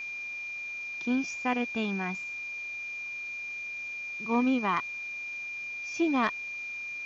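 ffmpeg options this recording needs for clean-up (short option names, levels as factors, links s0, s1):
-af "bandreject=f=2400:w=30,afwtdn=0.0025"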